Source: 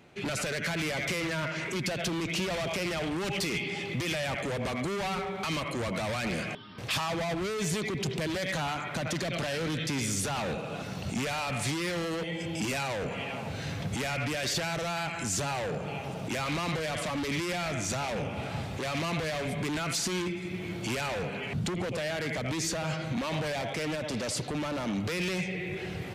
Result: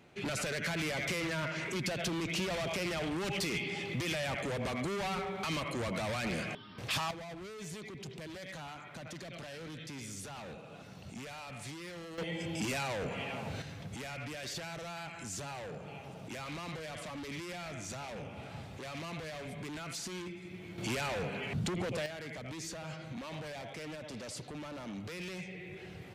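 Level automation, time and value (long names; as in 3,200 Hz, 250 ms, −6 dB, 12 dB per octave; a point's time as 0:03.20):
−3.5 dB
from 0:07.11 −13.5 dB
from 0:12.18 −3.5 dB
from 0:13.62 −10.5 dB
from 0:20.78 −3 dB
from 0:22.06 −11 dB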